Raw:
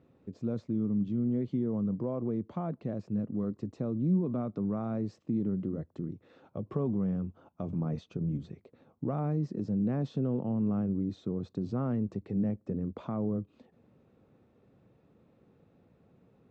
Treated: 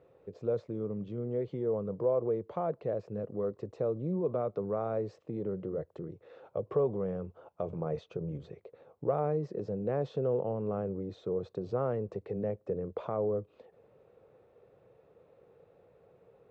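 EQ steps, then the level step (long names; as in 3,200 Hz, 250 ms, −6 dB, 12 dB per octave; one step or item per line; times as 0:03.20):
bass and treble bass +8 dB, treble −7 dB
parametric band 75 Hz −3 dB 1.1 octaves
low shelf with overshoot 340 Hz −11 dB, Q 3
+2.0 dB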